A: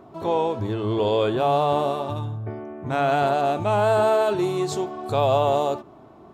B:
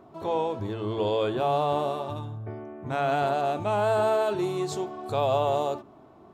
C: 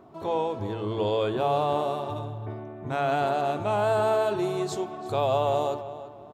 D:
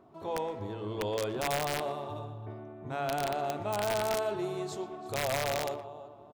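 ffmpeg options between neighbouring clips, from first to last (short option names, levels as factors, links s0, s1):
-af "bandreject=f=56.15:t=h:w=4,bandreject=f=112.3:t=h:w=4,bandreject=f=168.45:t=h:w=4,bandreject=f=224.6:t=h:w=4,bandreject=f=280.75:t=h:w=4,bandreject=f=336.9:t=h:w=4,bandreject=f=393.05:t=h:w=4,volume=0.596"
-filter_complex "[0:a]asplit=2[s0][s1];[s1]adelay=338,lowpass=f=3000:p=1,volume=0.224,asplit=2[s2][s3];[s3]adelay=338,lowpass=f=3000:p=1,volume=0.34,asplit=2[s4][s5];[s5]adelay=338,lowpass=f=3000:p=1,volume=0.34[s6];[s0][s2][s4][s6]amix=inputs=4:normalize=0"
-filter_complex "[0:a]aeval=exprs='(mod(6.68*val(0)+1,2)-1)/6.68':c=same,asplit=2[s0][s1];[s1]adelay=120,highpass=300,lowpass=3400,asoftclip=type=hard:threshold=0.0562,volume=0.282[s2];[s0][s2]amix=inputs=2:normalize=0,volume=0.447"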